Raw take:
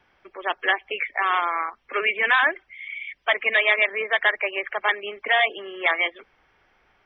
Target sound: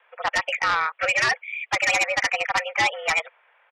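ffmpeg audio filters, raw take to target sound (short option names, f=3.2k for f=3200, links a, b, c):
-af "highpass=f=370:t=q:w=0.5412,highpass=f=370:t=q:w=1.307,lowpass=f=3k:t=q:w=0.5176,lowpass=f=3k:t=q:w=0.7071,lowpass=f=3k:t=q:w=1.932,afreqshift=130,aeval=exprs='0.447*sin(PI/2*2.82*val(0)/0.447)':c=same,atempo=1.9,volume=-8.5dB"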